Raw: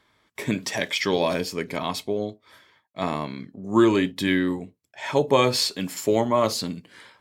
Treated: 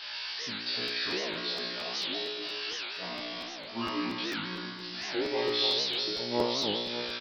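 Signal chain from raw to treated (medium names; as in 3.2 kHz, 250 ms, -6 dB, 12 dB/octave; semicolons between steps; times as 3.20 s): zero-crossing glitches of -14.5 dBFS; tone controls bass -13 dB, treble +6 dB; formant shift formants -4 st; crossover distortion -43 dBFS; feedback comb 60 Hz, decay 0.82 s, harmonics all, mix 100%; resampled via 11.025 kHz; two-band feedback delay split 1.1 kHz, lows 292 ms, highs 160 ms, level -4.5 dB; crackling interface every 0.23 s, samples 512, repeat, from 0.87 s; warped record 78 rpm, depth 250 cents; trim +2 dB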